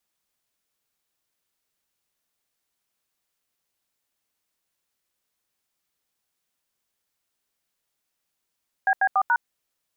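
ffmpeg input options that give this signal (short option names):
-f lavfi -i "aevalsrc='0.106*clip(min(mod(t,0.143),0.061-mod(t,0.143))/0.002,0,1)*(eq(floor(t/0.143),0)*(sin(2*PI*770*mod(t,0.143))+sin(2*PI*1633*mod(t,0.143)))+eq(floor(t/0.143),1)*(sin(2*PI*770*mod(t,0.143))+sin(2*PI*1633*mod(t,0.143)))+eq(floor(t/0.143),2)*(sin(2*PI*770*mod(t,0.143))+sin(2*PI*1209*mod(t,0.143)))+eq(floor(t/0.143),3)*(sin(2*PI*941*mod(t,0.143))+sin(2*PI*1477*mod(t,0.143))))':d=0.572:s=44100"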